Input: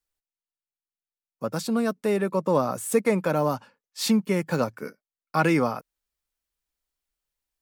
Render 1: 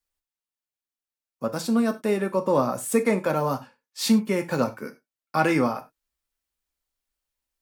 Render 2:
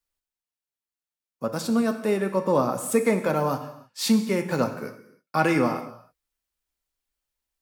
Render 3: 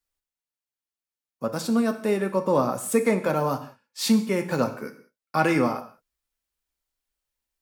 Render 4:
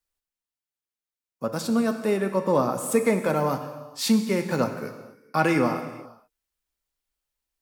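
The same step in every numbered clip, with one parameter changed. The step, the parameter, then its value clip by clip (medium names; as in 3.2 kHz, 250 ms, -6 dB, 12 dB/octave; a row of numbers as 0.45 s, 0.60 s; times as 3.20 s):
gated-style reverb, gate: 120 ms, 340 ms, 220 ms, 500 ms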